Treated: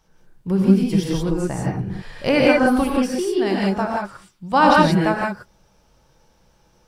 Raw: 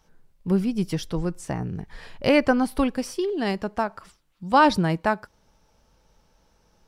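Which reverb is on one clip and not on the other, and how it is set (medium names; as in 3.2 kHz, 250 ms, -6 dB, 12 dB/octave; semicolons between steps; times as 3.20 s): gated-style reverb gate 200 ms rising, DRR -3 dB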